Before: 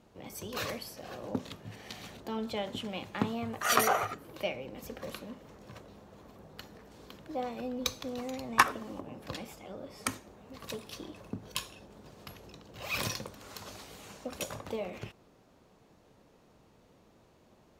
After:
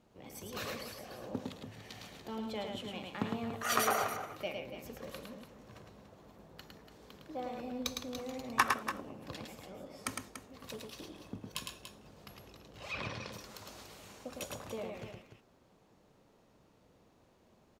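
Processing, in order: loudspeakers at several distances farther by 37 m -4 dB, 99 m -10 dB; 12.73–13.33 s: low-pass that closes with the level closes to 2.7 kHz, closed at -29 dBFS; trim -5.5 dB

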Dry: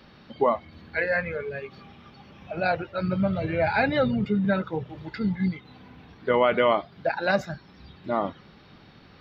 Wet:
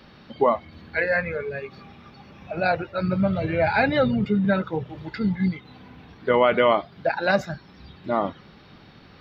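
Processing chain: 1.00–3.25 s: band-stop 3.1 kHz, Q 10; trim +2.5 dB

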